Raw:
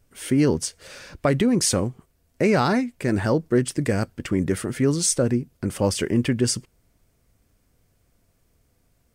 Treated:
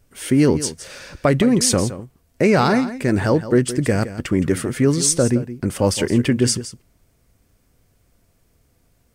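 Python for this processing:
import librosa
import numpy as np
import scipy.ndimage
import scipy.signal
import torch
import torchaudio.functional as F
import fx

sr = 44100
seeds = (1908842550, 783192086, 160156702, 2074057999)

y = x + 10.0 ** (-13.5 / 20.0) * np.pad(x, (int(167 * sr / 1000.0), 0))[:len(x)]
y = y * librosa.db_to_amplitude(4.0)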